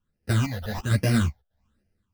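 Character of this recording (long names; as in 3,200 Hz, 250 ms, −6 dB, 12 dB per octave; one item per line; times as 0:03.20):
aliases and images of a low sample rate 2,200 Hz, jitter 0%
phaser sweep stages 8, 1.2 Hz, lowest notch 300–1,100 Hz
sample-and-hold tremolo 4.4 Hz, depth 65%
a shimmering, thickened sound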